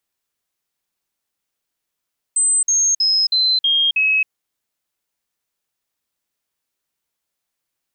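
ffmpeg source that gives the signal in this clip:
-f lavfi -i "aevalsrc='0.224*clip(min(mod(t,0.32),0.27-mod(t,0.32))/0.005,0,1)*sin(2*PI*8140*pow(2,-floor(t/0.32)/3)*mod(t,0.32))':d=1.92:s=44100"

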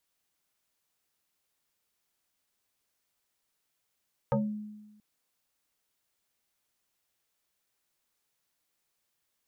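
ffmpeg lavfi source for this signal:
-f lavfi -i "aevalsrc='0.0794*pow(10,-3*t/1.15)*sin(2*PI*211*t+2.6*pow(10,-3*t/0.3)*sin(2*PI*1.64*211*t))':d=0.68:s=44100"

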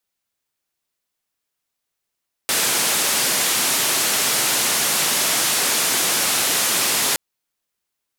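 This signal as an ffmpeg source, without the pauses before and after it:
-f lavfi -i "anoisesrc=c=white:d=4.67:r=44100:seed=1,highpass=f=160,lowpass=f=12000,volume=-12dB"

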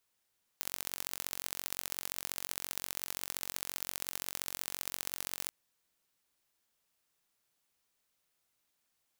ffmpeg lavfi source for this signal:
-f lavfi -i "aevalsrc='0.398*eq(mod(n,965),0)*(0.5+0.5*eq(mod(n,2895),0))':d=4.88:s=44100"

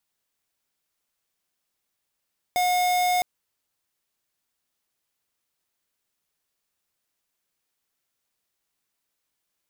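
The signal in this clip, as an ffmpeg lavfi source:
-f lavfi -i "aevalsrc='0.0794*(2*lt(mod(722*t,1),0.5)-1)':d=0.66:s=44100"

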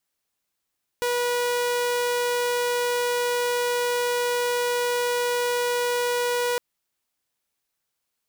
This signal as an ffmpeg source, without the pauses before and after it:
-f lavfi -i "aevalsrc='0.106*(2*mod(486*t,1)-1)':d=5.56:s=44100"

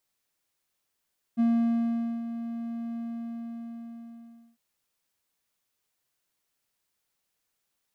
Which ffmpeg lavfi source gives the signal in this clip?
-f lavfi -i "aevalsrc='0.133*(1-4*abs(mod(232*t+0.25,1)-0.5))':d=3.2:s=44100,afade=t=in:d=0.03,afade=t=out:st=0.03:d=0.821:silence=0.251,afade=t=out:st=1.6:d=1.6"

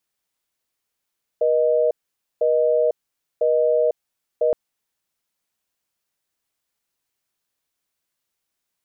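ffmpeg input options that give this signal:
-f lavfi -i "aevalsrc='0.126*(sin(2*PI*480*t)+sin(2*PI*620*t))*clip(min(mod(t,1),0.5-mod(t,1))/0.005,0,1)':d=3.12:s=44100"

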